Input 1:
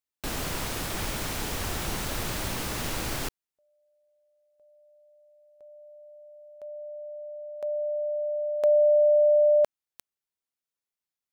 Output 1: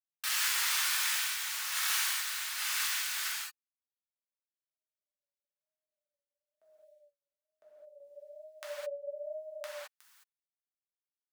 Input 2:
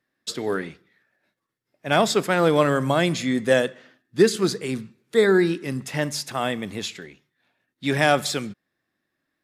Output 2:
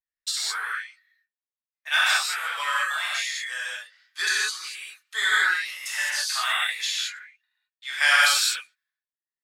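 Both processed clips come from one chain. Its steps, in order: high-pass 1.3 kHz 24 dB/octave; gate with hold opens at -52 dBFS, closes at -58 dBFS, hold 247 ms, range -25 dB; reverb removal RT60 0.72 s; random-step tremolo 3.5 Hz, depth 75%; vibrato 1.1 Hz 93 cents; gated-style reverb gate 240 ms flat, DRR -8 dB; trim +1 dB

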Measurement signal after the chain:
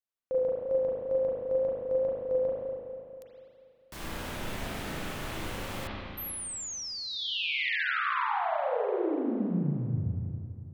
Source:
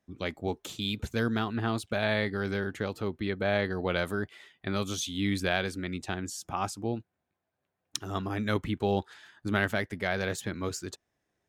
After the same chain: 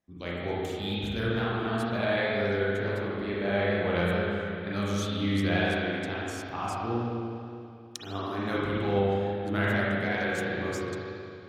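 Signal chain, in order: spring tank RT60 2.6 s, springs 34/40 ms, chirp 45 ms, DRR -7.5 dB; wow and flutter 25 cents; trim -6 dB

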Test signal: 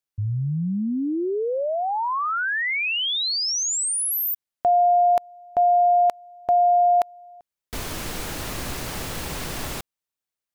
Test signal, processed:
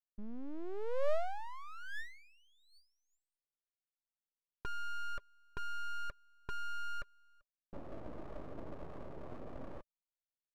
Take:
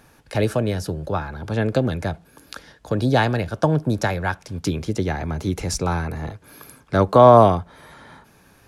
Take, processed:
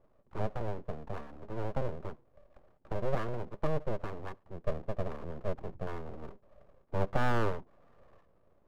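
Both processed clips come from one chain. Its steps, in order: cascade formant filter u; full-wave rectifier; trim -1 dB

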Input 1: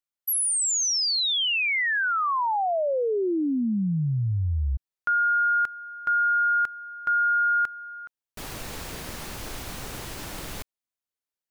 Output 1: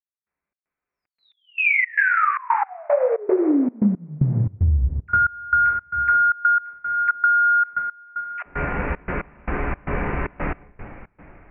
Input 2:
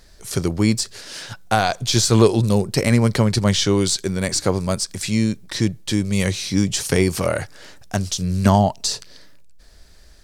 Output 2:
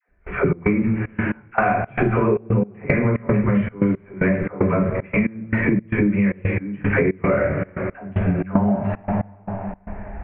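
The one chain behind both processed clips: two-slope reverb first 0.49 s, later 3.4 s, from -17 dB, DRR -3.5 dB; in parallel at +1 dB: peak limiter -8 dBFS; on the sum: phase dispersion lows, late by 90 ms, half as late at 590 Hz; trance gate "..xx.xxx.x" 114 bpm -24 dB; steep low-pass 2.4 kHz 72 dB/octave; dynamic bell 830 Hz, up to -5 dB, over -31 dBFS, Q 3.6; compression 12:1, threshold -17 dBFS; trim +2 dB

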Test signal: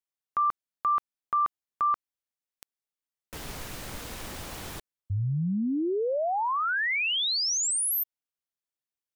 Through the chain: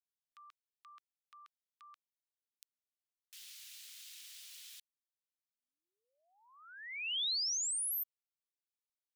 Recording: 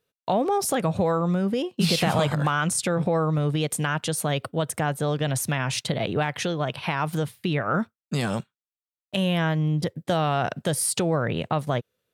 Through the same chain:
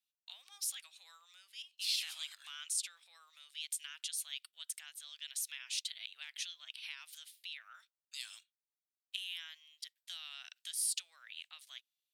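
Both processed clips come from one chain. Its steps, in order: ladder high-pass 2.5 kHz, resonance 25%; trim -3.5 dB

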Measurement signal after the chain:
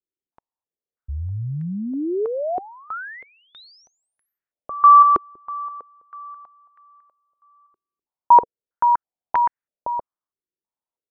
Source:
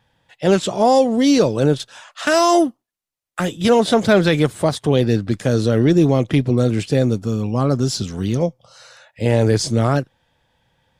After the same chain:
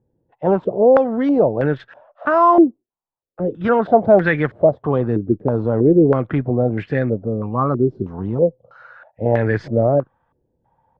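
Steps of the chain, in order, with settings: distance through air 77 m; step-sequenced low-pass 3.1 Hz 380–1800 Hz; trim -3.5 dB

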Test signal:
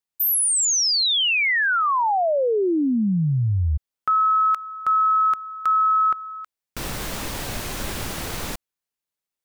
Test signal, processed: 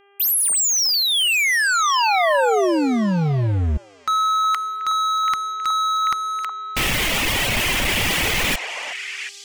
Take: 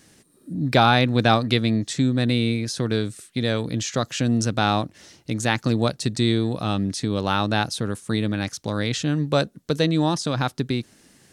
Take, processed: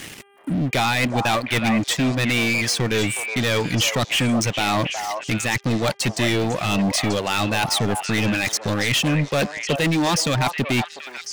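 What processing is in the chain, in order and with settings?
high-order bell 2.5 kHz +11 dB 1 oct; reverb removal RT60 1.4 s; reverse; compression 5:1, threshold -31 dBFS; reverse; waveshaping leveller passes 5; mains buzz 400 Hz, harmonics 8, -55 dBFS -4 dB/octave; on a send: repeats whose band climbs or falls 367 ms, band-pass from 810 Hz, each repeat 1.4 oct, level -3 dB

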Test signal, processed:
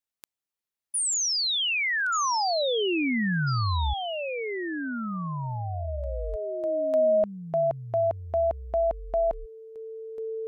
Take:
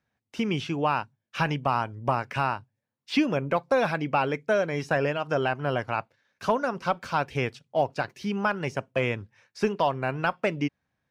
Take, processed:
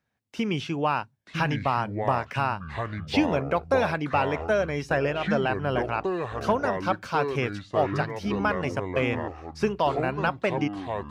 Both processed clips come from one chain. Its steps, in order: ever faster or slower copies 794 ms, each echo -6 st, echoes 2, each echo -6 dB

